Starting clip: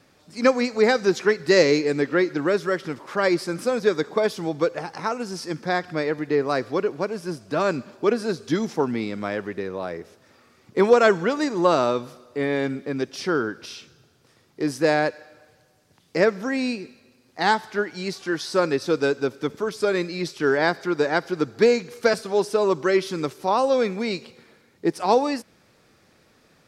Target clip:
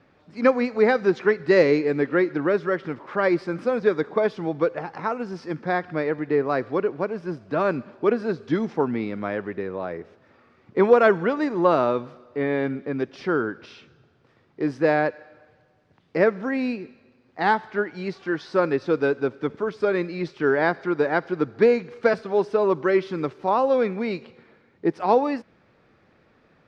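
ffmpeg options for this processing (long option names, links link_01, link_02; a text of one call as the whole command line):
ffmpeg -i in.wav -af "lowpass=2400" out.wav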